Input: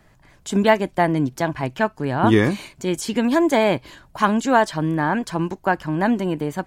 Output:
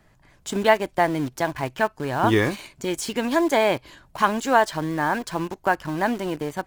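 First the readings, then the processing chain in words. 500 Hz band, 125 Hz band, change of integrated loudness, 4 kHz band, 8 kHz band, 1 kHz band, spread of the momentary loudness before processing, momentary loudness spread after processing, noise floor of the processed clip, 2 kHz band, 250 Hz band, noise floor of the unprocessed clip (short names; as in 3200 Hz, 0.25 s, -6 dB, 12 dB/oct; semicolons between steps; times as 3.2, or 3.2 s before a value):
-2.0 dB, -6.0 dB, -2.5 dB, -0.5 dB, 0.0 dB, -1.0 dB, 8 LU, 10 LU, -59 dBFS, -0.5 dB, -6.0 dB, -55 dBFS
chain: dynamic EQ 190 Hz, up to -8 dB, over -33 dBFS, Q 1; in parallel at -8 dB: bit-crush 5-bit; on the sum: gain -3.5 dB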